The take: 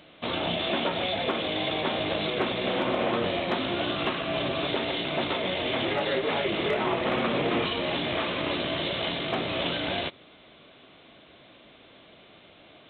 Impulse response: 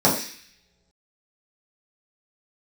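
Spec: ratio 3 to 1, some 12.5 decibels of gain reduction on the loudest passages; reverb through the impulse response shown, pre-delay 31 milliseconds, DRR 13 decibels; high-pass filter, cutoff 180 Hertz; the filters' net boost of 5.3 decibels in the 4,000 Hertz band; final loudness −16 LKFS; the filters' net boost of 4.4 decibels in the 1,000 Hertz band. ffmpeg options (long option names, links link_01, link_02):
-filter_complex "[0:a]highpass=180,equalizer=frequency=1000:width_type=o:gain=5.5,equalizer=frequency=4000:width_type=o:gain=6.5,acompressor=threshold=-38dB:ratio=3,asplit=2[link_01][link_02];[1:a]atrim=start_sample=2205,adelay=31[link_03];[link_02][link_03]afir=irnorm=-1:irlink=0,volume=-32.5dB[link_04];[link_01][link_04]amix=inputs=2:normalize=0,volume=19.5dB"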